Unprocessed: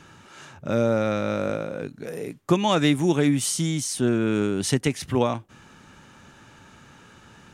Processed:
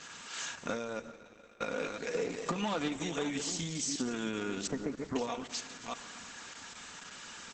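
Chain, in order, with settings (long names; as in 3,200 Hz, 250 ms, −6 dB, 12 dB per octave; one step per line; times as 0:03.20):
delay that plays each chunk backwards 330 ms, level −9.5 dB
0:04.67–0:05.16: Bessel low-pass filter 980 Hz, order 8
bit-depth reduction 10 bits, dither none
0:00.99–0:01.61: gate with flip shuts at −22 dBFS, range −30 dB
0:02.14–0:02.88: leveller curve on the samples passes 2
de-essing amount 95%
spectral tilt +3.5 dB per octave
downward compressor 6 to 1, threshold −31 dBFS, peak gain reduction 13.5 dB
comb filter 4.2 ms, depth 52%
convolution reverb RT60 2.2 s, pre-delay 15 ms, DRR 12.5 dB
Opus 10 kbit/s 48,000 Hz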